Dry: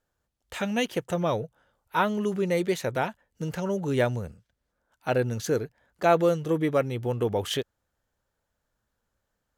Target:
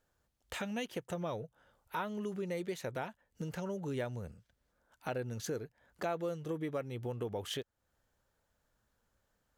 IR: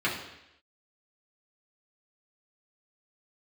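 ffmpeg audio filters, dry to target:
-af "acompressor=threshold=0.00708:ratio=2.5,volume=1.12"

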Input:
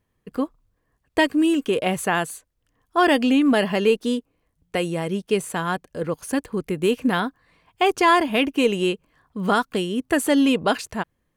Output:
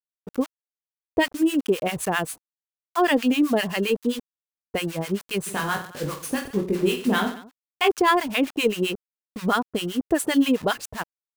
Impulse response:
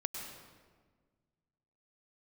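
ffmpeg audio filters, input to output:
-filter_complex "[0:a]acrusher=bits=5:mix=0:aa=0.000001,acrossover=split=860[s0][s1];[s0]aeval=exprs='val(0)*(1-1/2+1/2*cos(2*PI*7.6*n/s))':c=same[s2];[s1]aeval=exprs='val(0)*(1-1/2-1/2*cos(2*PI*7.6*n/s))':c=same[s3];[s2][s3]amix=inputs=2:normalize=0,asplit=3[s4][s5][s6];[s4]afade=t=out:st=5.46:d=0.02[s7];[s5]aecho=1:1:20|48|87.2|142.1|218.9:0.631|0.398|0.251|0.158|0.1,afade=t=in:st=5.46:d=0.02,afade=t=out:st=7.87:d=0.02[s8];[s6]afade=t=in:st=7.87:d=0.02[s9];[s7][s8][s9]amix=inputs=3:normalize=0,volume=1.26"

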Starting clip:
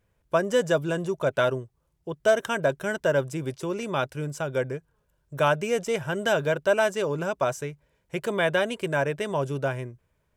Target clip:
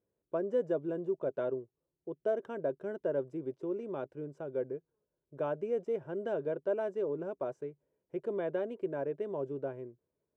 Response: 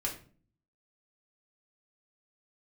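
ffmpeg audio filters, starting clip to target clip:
-af "bandpass=f=370:t=q:w=1.9:csg=0,volume=0.631"

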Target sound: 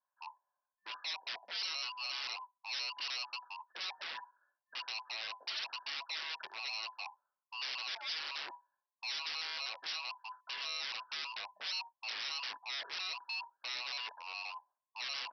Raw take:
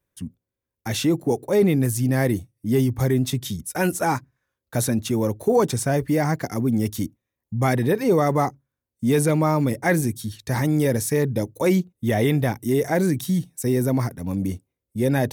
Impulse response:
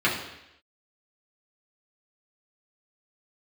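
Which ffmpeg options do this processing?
-af "afftfilt=real='real(if(between(b,1,1008),(2*floor((b-1)/48)+1)*48-b,b),0)':imag='imag(if(between(b,1,1008),(2*floor((b-1)/48)+1)*48-b,b),0)*if(between(b,1,1008),-1,1)':win_size=2048:overlap=0.75,afftfilt=real='re*between(b*sr/4096,110,1700)':imag='im*between(b*sr/4096,110,1700)':win_size=4096:overlap=0.75,aresample=11025,aeval=exprs='0.0531*(abs(mod(val(0)/0.0531+3,4)-2)-1)':c=same,aresample=44100,lowshelf=f=210:g=-5,areverse,acompressor=threshold=0.00501:ratio=20,areverse,afreqshift=79,aderivative,dynaudnorm=f=110:g=3:m=5.31,volume=1.33"

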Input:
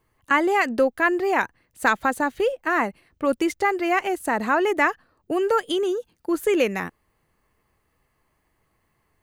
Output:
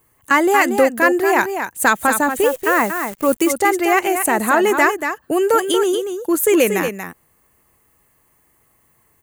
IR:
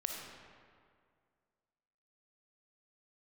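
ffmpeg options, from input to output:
-filter_complex "[0:a]acontrast=51,highpass=f=57:p=1,asplit=2[s0][s1];[s1]aecho=0:1:234:0.422[s2];[s0][s2]amix=inputs=2:normalize=0,asettb=1/sr,asplit=3[s3][s4][s5];[s3]atrim=end=2.414[s6];[s4]atrim=start=2.41:end=3.49,asetpts=PTS-STARTPTS,afade=t=in:d=0.004:c=qsin,afade=t=out:st=1.076:d=0.004:c=qsin,acrusher=bits=7:dc=4:mix=0:aa=0.000001[s7];[s5]atrim=start=3.486[s8];[s6][s7]acrossfade=d=0.004:c1=hsin:c2=qsin[s9];[s9][s8]acrossfade=d=0.004:c1=qsin:c2=hsin,aexciter=amount=5.1:drive=1.3:freq=6600"

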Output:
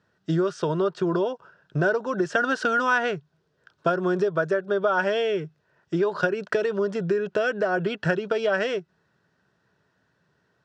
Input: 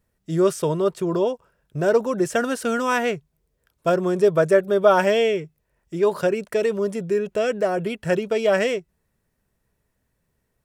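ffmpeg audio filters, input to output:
-af "acompressor=threshold=0.0447:ratio=12,highpass=f=110:w=0.5412,highpass=f=110:w=1.3066,equalizer=f=120:t=q:w=4:g=-5,equalizer=f=230:t=q:w=4:g=-7,equalizer=f=510:t=q:w=4:g=-4,equalizer=f=1500:t=q:w=4:g=9,equalizer=f=2200:t=q:w=4:g=-8,lowpass=f=5300:w=0.5412,lowpass=f=5300:w=1.3066,volume=2.51"

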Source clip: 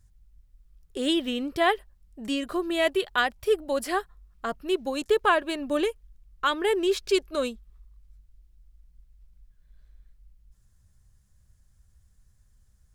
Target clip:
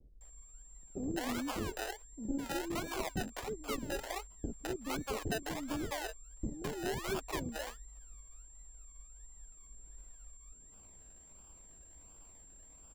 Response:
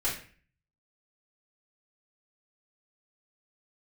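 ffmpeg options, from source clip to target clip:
-filter_complex "[0:a]equalizer=f=125:t=o:w=1:g=-12,equalizer=f=500:t=o:w=1:g=-3,equalizer=f=1000:t=o:w=1:g=4,equalizer=f=2000:t=o:w=1:g=5,equalizer=f=4000:t=o:w=1:g=7,equalizer=f=8000:t=o:w=1:g=11,acrossover=split=250[s0][s1];[s1]acompressor=threshold=0.0158:ratio=6[s2];[s0][s2]amix=inputs=2:normalize=0,acrusher=samples=31:mix=1:aa=0.000001:lfo=1:lforange=18.6:lforate=1.4,aeval=exprs='val(0)+0.00158*sin(2*PI*7400*n/s)':c=same,acrossover=split=460[s3][s4];[s4]adelay=210[s5];[s3][s5]amix=inputs=2:normalize=0"

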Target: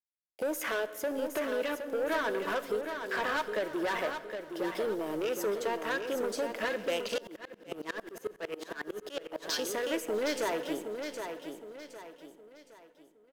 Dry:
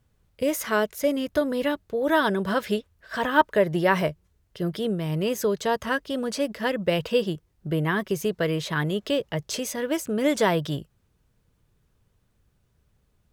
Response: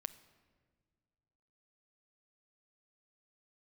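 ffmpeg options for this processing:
-filter_complex "[0:a]afwtdn=0.0178,highpass=f=310:w=0.5412,highpass=f=310:w=1.3066,highshelf=f=3400:g=11,acompressor=threshold=0.0126:ratio=2,acrusher=bits=9:mix=0:aa=0.000001,asoftclip=type=tanh:threshold=0.0211,aecho=1:1:765|1530|2295|3060:0.447|0.17|0.0645|0.0245[s0];[1:a]atrim=start_sample=2205,asetrate=31311,aresample=44100[s1];[s0][s1]afir=irnorm=-1:irlink=0,asplit=3[s2][s3][s4];[s2]afade=t=out:st=7.16:d=0.02[s5];[s3]aeval=exprs='val(0)*pow(10,-24*if(lt(mod(-11*n/s,1),2*abs(-11)/1000),1-mod(-11*n/s,1)/(2*abs(-11)/1000),(mod(-11*n/s,1)-2*abs(-11)/1000)/(1-2*abs(-11)/1000))/20)':c=same,afade=t=in:st=7.16:d=0.02,afade=t=out:st=9.42:d=0.02[s6];[s4]afade=t=in:st=9.42:d=0.02[s7];[s5][s6][s7]amix=inputs=3:normalize=0,volume=2.37"

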